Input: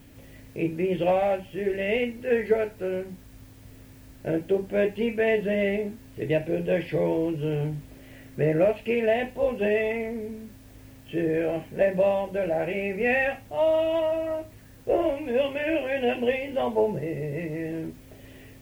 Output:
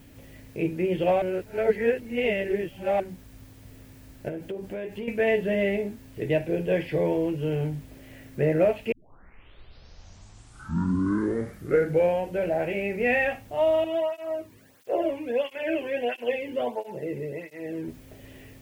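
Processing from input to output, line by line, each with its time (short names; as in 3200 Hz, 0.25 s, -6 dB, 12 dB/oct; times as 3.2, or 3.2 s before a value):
1.22–3 reverse
4.28–5.08 compressor 8:1, threshold -30 dBFS
8.92 tape start 3.54 s
13.84–17.88 tape flanging out of phase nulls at 1.5 Hz, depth 1.6 ms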